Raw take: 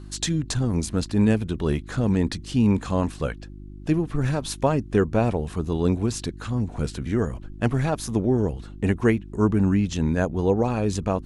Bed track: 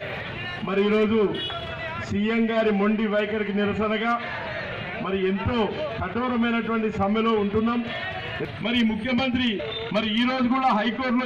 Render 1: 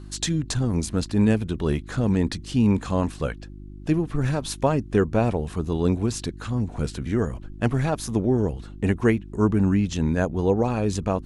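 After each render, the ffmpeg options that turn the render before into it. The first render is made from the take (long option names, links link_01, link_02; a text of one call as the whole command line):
ffmpeg -i in.wav -af anull out.wav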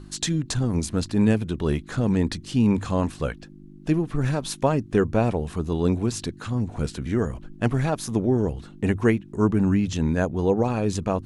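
ffmpeg -i in.wav -af "bandreject=frequency=50:width_type=h:width=4,bandreject=frequency=100:width_type=h:width=4" out.wav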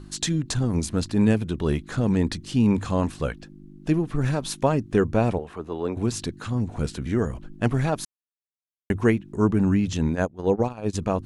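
ffmpeg -i in.wav -filter_complex "[0:a]asettb=1/sr,asplit=3[link_01][link_02][link_03];[link_01]atrim=end=5.384[link_04];[link_02]atrim=start=5.38:end=5.97,asetpts=PTS-STARTPTS,afade=type=in:duration=0.004:curve=qsin,afade=type=out:start_time=0.586:duration=0.004:curve=qsin,acrossover=split=340 2800:gain=0.2 1 0.2[link_05][link_06][link_07];[link_05][link_06][link_07]amix=inputs=3:normalize=0[link_08];[link_03]atrim=start=5.966[link_09];[link_04][link_08]acrossfade=duration=0.004:curve1=hsin:curve2=qsin[link_10];[link_10][link_09]acrossfade=duration=0.004:curve1=qsin:curve2=hsin,asplit=3[link_11][link_12][link_13];[link_11]afade=type=out:start_time=10.08:duration=0.02[link_14];[link_12]agate=range=-20dB:threshold=-23dB:ratio=16:release=100:detection=peak,afade=type=in:start_time=10.08:duration=0.02,afade=type=out:start_time=10.93:duration=0.02[link_15];[link_13]afade=type=in:start_time=10.93:duration=0.02[link_16];[link_14][link_15][link_16]amix=inputs=3:normalize=0,asplit=3[link_17][link_18][link_19];[link_17]atrim=end=8.05,asetpts=PTS-STARTPTS,afade=type=out:start_time=8.046:duration=0.004:curve=hsin[link_20];[link_18]atrim=start=8.05:end=8.9,asetpts=PTS-STARTPTS,volume=0[link_21];[link_19]atrim=start=8.9,asetpts=PTS-STARTPTS,afade=type=in:duration=0.004:curve=hsin[link_22];[link_20][link_21][link_22]concat=n=3:v=0:a=1" out.wav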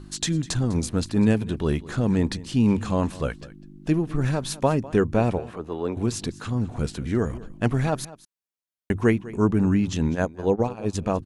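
ffmpeg -i in.wav -af "aecho=1:1:201:0.119" out.wav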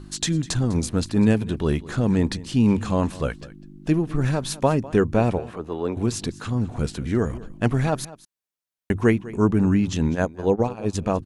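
ffmpeg -i in.wav -af "volume=1.5dB" out.wav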